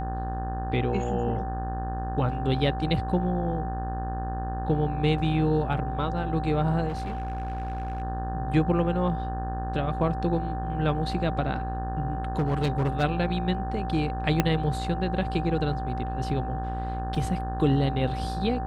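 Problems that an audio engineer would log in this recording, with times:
mains buzz 60 Hz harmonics 30 −32 dBFS
whistle 770 Hz −33 dBFS
0:06.88–0:08.02: clipping −27.5 dBFS
0:12.38–0:13.04: clipping −20.5 dBFS
0:14.40: click −7 dBFS
0:17.15: drop-out 4 ms

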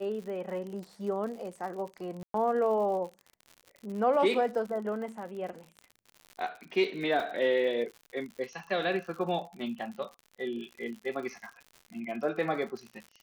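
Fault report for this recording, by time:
surface crackle 77 per second −39 dBFS
0:02.23–0:02.34: drop-out 113 ms
0:07.20: drop-out 2.7 ms

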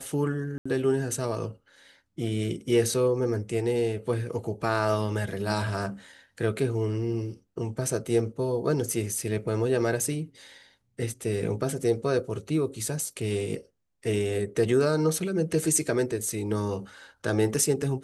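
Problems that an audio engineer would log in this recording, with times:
0:00.58–0:00.66: drop-out 75 ms

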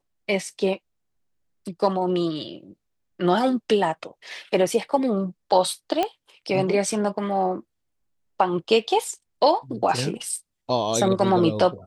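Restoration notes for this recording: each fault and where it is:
0:06.03: click −10 dBFS

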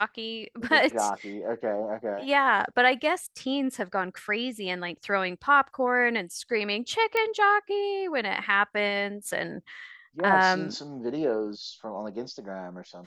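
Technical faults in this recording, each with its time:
0:07.17: click −14 dBFS

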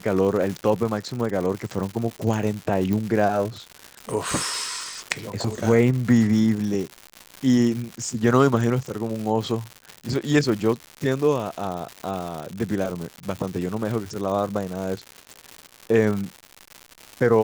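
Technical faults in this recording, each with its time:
surface crackle 220 per second −28 dBFS
0:02.93: click

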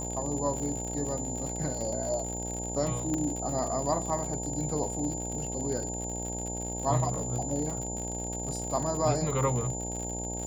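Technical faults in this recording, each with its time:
mains buzz 60 Hz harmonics 15 −37 dBFS
surface crackle 83 per second −34 dBFS
whistle 7,100 Hz −36 dBFS
0:03.14: click −20 dBFS

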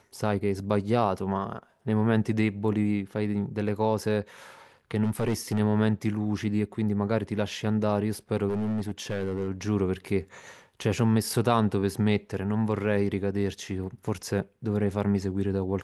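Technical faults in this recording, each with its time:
0:05.04–0:05.59: clipping −21 dBFS
0:08.48–0:09.48: clipping −24.5 dBFS

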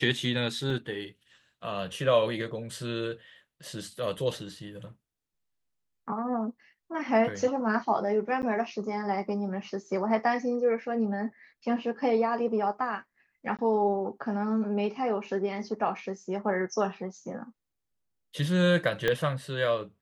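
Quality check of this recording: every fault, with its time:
0:00.70: drop-out 2.7 ms
0:08.42–0:08.43: drop-out 9.7 ms
0:13.57–0:13.59: drop-out 17 ms
0:19.08: click −13 dBFS

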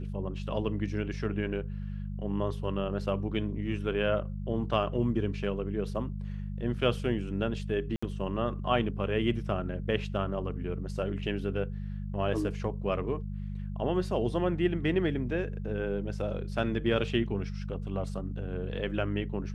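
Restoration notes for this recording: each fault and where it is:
mains hum 50 Hz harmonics 4 −36 dBFS
0:07.96–0:08.03: drop-out 65 ms

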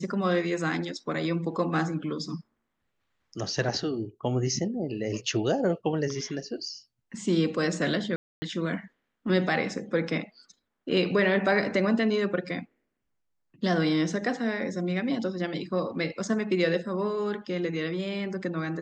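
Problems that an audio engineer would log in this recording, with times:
0:08.16–0:08.42: drop-out 260 ms

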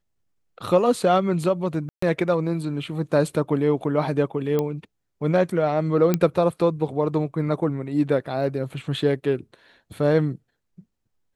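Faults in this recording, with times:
0:01.89–0:02.02: drop-out 134 ms
0:04.59: click −12 dBFS
0:06.14: click −7 dBFS

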